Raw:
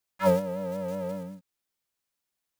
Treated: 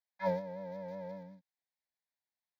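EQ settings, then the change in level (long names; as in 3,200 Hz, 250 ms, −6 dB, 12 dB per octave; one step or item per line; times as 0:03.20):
three-way crossover with the lows and the highs turned down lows −14 dB, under 160 Hz, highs −20 dB, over 4,600 Hz
phaser with its sweep stopped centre 1,900 Hz, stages 8
−6.0 dB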